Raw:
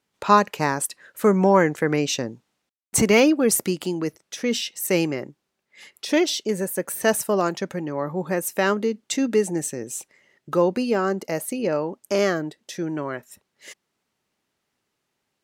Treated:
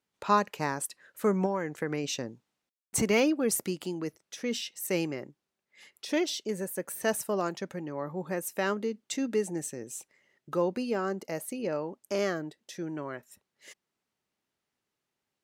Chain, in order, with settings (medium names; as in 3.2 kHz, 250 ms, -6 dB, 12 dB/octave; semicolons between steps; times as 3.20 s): 1.45–2.04 s: compression 6:1, threshold -18 dBFS, peak gain reduction 8 dB; trim -8.5 dB